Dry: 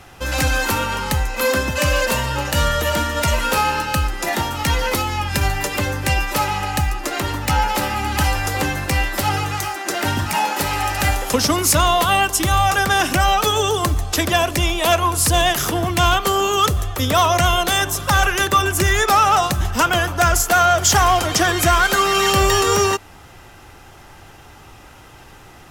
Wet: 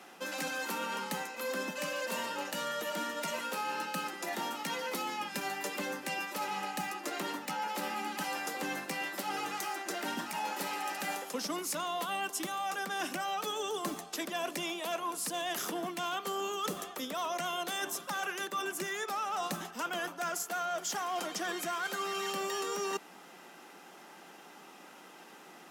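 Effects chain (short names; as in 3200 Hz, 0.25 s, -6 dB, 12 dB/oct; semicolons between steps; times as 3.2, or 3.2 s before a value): elliptic high-pass 180 Hz, stop band 40 dB; reverse; compressor 6:1, threshold -26 dBFS, peak gain reduction 13.5 dB; reverse; gain -7.5 dB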